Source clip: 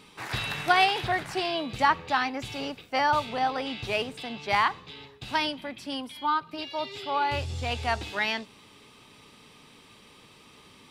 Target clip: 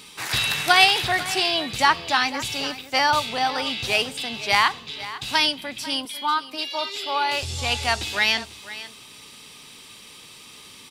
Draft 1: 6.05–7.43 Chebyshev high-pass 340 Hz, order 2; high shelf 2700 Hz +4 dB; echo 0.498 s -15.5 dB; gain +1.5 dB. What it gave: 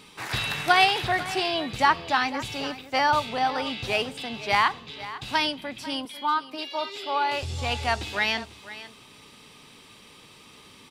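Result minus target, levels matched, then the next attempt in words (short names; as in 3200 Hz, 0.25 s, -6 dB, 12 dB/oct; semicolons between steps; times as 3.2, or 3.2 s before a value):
4000 Hz band -3.0 dB
6.05–7.43 Chebyshev high-pass 340 Hz, order 2; high shelf 2700 Hz +15 dB; echo 0.498 s -15.5 dB; gain +1.5 dB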